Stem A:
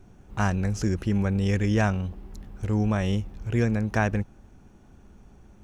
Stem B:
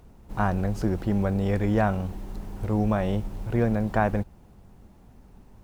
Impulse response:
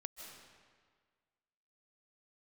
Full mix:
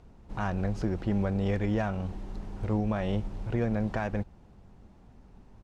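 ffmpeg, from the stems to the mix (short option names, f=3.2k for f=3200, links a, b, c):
-filter_complex "[0:a]highpass=1k,aecho=1:1:6.5:0.84,adynamicsmooth=sensitivity=5.5:basefreq=1.5k,volume=-13.5dB[a];[1:a]alimiter=limit=-17dB:level=0:latency=1:release=244,volume=-2.5dB[b];[a][b]amix=inputs=2:normalize=0,lowpass=6.3k"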